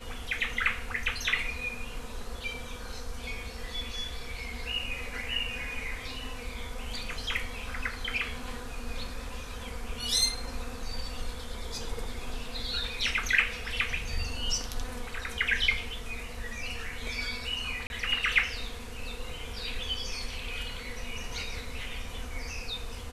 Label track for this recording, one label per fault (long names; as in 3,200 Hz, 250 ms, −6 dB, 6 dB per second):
17.870000	17.900000	drop-out 31 ms